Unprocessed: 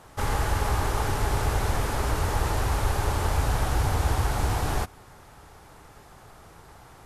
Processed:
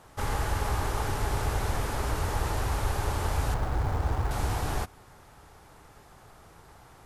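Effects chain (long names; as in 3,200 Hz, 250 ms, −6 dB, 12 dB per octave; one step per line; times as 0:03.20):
0:03.54–0:04.31: running median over 15 samples
level −3.5 dB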